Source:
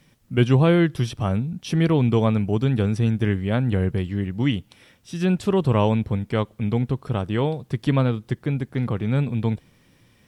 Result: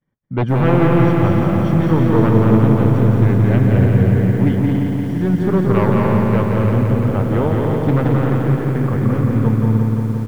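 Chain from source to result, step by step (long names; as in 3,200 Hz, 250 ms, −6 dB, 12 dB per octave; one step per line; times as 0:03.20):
downward expander −44 dBFS
Savitzky-Golay smoothing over 41 samples
sine wavefolder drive 7 dB, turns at −6 dBFS
on a send: loudspeakers that aren't time-aligned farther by 75 metres −4 dB, 97 metres −6 dB
on the sum: feedback echo at a low word length 173 ms, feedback 80%, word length 7 bits, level −4 dB
level −6 dB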